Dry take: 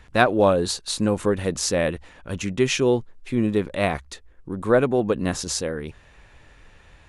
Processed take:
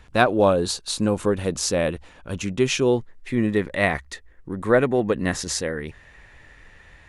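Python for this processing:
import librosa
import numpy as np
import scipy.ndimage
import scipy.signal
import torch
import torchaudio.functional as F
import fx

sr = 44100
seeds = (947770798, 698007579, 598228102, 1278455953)

y = fx.peak_eq(x, sr, hz=1900.0, db=fx.steps((0.0, -3.5), (2.98, 10.5)), octaves=0.27)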